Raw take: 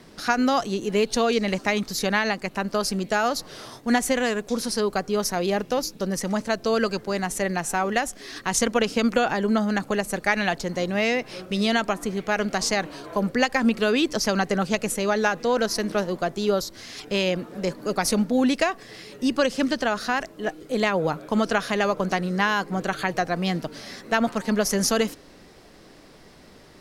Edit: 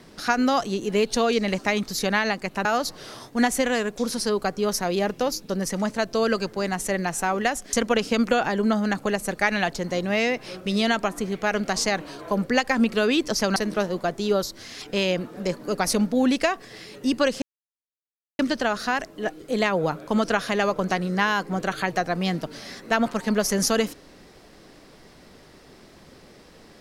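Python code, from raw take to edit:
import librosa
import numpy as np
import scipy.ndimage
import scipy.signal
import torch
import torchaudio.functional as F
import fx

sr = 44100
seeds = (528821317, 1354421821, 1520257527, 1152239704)

y = fx.edit(x, sr, fx.cut(start_s=2.65, length_s=0.51),
    fx.cut(start_s=8.24, length_s=0.34),
    fx.cut(start_s=14.41, length_s=1.33),
    fx.insert_silence(at_s=19.6, length_s=0.97), tone=tone)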